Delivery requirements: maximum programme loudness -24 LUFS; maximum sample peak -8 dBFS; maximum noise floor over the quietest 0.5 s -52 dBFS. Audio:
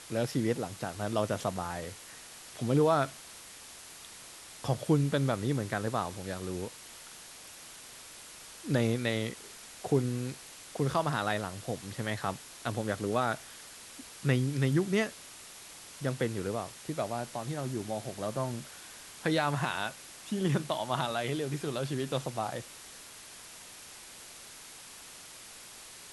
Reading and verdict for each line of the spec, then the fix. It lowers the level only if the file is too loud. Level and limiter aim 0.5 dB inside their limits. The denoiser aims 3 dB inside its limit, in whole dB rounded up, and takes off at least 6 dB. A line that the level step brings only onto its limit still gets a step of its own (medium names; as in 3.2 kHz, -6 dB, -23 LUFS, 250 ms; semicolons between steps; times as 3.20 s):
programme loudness -32.5 LUFS: pass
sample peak -14.0 dBFS: pass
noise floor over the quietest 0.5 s -49 dBFS: fail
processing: noise reduction 6 dB, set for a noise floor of -49 dBFS